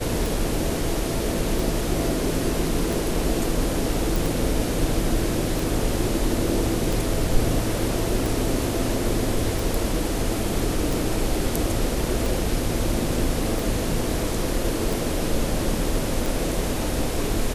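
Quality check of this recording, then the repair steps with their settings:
tick 45 rpm
4.16 s: pop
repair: de-click

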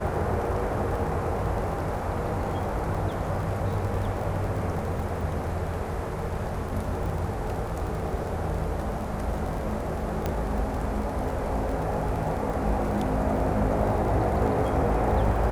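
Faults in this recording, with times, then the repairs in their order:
crackle 26 per s -32 dBFS
10.26 s: pop -14 dBFS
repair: de-click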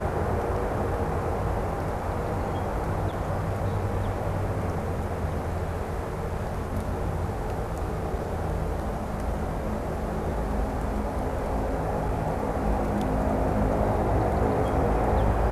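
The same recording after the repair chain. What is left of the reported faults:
nothing left

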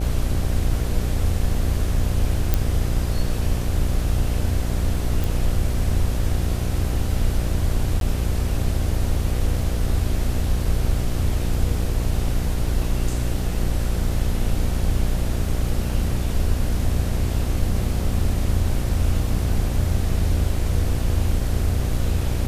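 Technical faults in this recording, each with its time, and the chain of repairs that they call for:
buzz 60 Hz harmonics 13 -25 dBFS
2.54 s: pop
5.24 s: pop
8.00–8.01 s: dropout 12 ms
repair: de-click; de-hum 60 Hz, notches 13; interpolate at 8.00 s, 12 ms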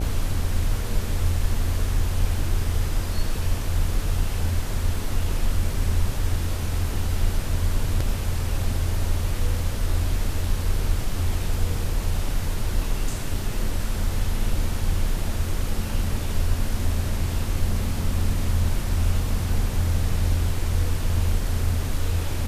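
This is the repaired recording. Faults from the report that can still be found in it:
nothing left

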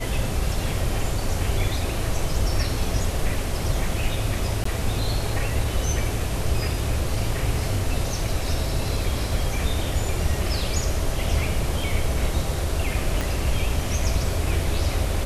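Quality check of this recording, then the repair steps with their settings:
4.64–4.65 s: dropout 14 ms
13.21 s: pop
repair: de-click; interpolate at 4.64 s, 14 ms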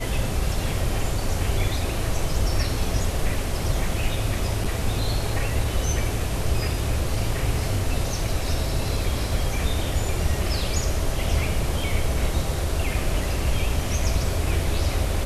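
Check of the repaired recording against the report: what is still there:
13.21 s: pop

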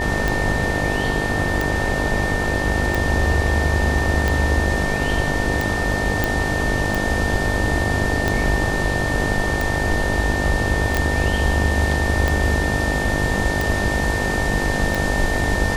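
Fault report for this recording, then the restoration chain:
buzz 50 Hz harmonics 19 -25 dBFS
tick 45 rpm
whine 1.8 kHz -24 dBFS
6.24 s: pop
10.97 s: pop -5 dBFS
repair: de-click; de-hum 50 Hz, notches 19; band-stop 1.8 kHz, Q 30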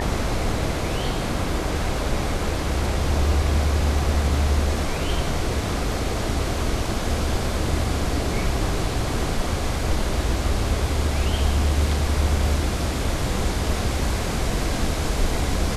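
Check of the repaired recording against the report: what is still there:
nothing left

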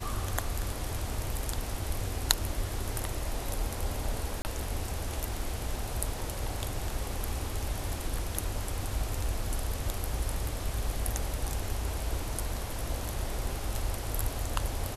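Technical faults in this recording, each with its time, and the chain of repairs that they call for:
4.42–4.45 s: dropout 29 ms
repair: interpolate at 4.42 s, 29 ms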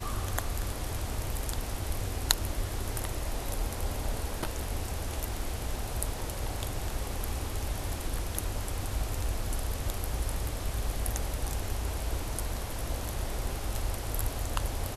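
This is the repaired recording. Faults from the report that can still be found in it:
nothing left

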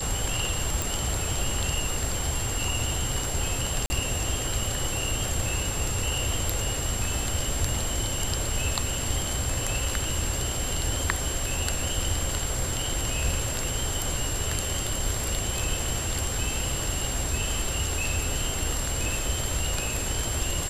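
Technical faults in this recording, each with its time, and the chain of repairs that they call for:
whine 7.5 kHz -32 dBFS
0.82 s: pop
3.86–3.90 s: dropout 40 ms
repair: de-click; band-stop 7.5 kHz, Q 30; interpolate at 3.86 s, 40 ms

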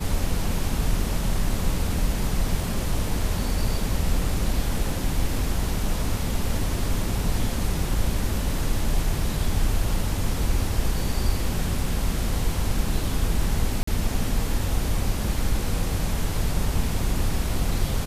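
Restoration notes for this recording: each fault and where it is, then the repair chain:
13.83–13.87 s: dropout 44 ms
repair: interpolate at 13.83 s, 44 ms

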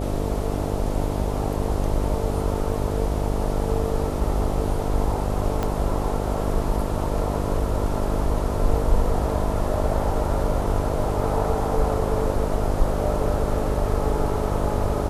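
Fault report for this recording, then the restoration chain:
buzz 50 Hz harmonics 14 -27 dBFS
5.63 s: pop -12 dBFS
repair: de-click; de-hum 50 Hz, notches 14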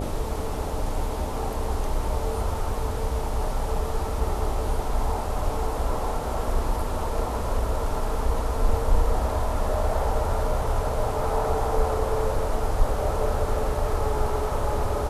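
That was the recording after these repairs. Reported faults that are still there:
5.63 s: pop

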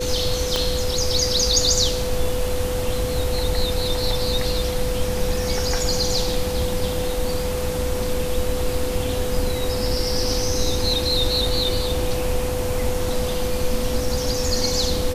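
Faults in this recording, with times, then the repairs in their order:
whine 500 Hz -25 dBFS
0.56 s: pop -6 dBFS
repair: de-click; band-stop 500 Hz, Q 30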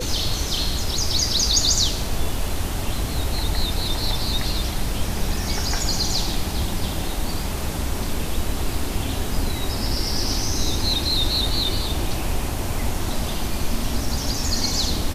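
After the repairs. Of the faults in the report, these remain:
0.56 s: pop

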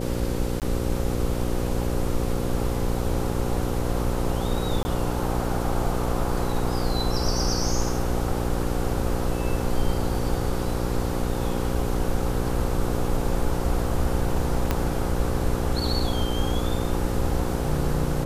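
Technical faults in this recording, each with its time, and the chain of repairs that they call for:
buzz 60 Hz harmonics 9 -28 dBFS
0.60–0.62 s: dropout 18 ms
4.83–4.85 s: dropout 20 ms
14.71 s: pop -9 dBFS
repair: de-click; de-hum 60 Hz, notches 9; interpolate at 0.60 s, 18 ms; interpolate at 4.83 s, 20 ms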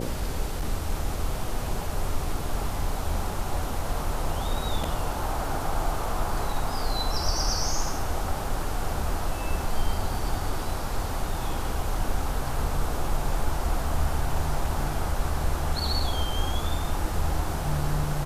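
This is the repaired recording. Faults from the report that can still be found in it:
14.71 s: pop

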